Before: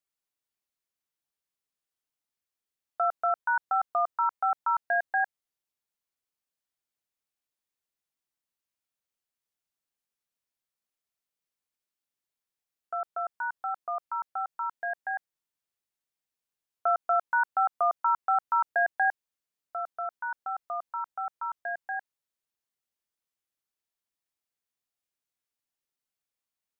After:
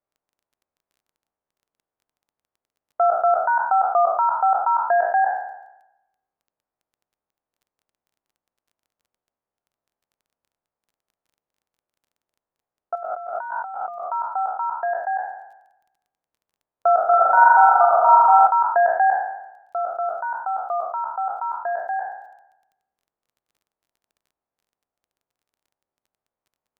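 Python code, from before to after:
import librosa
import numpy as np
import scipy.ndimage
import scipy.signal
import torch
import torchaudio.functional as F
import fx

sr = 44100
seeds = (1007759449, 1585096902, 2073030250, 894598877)

y = fx.spec_trails(x, sr, decay_s=0.9)
y = scipy.signal.sosfilt(scipy.signal.butter(2, 1100.0, 'lowpass', fs=sr, output='sos'), y)
y = fx.peak_eq(y, sr, hz=700.0, db=6.0, octaves=1.7)
y = fx.over_compress(y, sr, threshold_db=-36.0, ratio=-1.0, at=(12.95, 14.06))
y = fx.dmg_crackle(y, sr, seeds[0], per_s=18.0, level_db=-57.0)
y = fx.room_flutter(y, sr, wall_m=7.3, rt60_s=1.4, at=(17.04, 18.47))
y = y * 10.0 ** (5.5 / 20.0)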